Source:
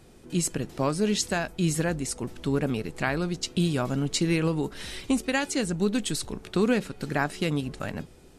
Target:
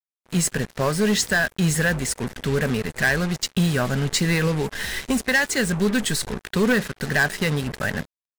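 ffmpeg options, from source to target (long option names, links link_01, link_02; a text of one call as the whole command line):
ffmpeg -i in.wav -af "superequalizer=6b=0.398:11b=2.82,aeval=exprs='0.335*(cos(1*acos(clip(val(0)/0.335,-1,1)))-cos(1*PI/2))+0.075*(cos(5*acos(clip(val(0)/0.335,-1,1)))-cos(5*PI/2))':channel_layout=same,acrusher=bits=4:mix=0:aa=0.5" out.wav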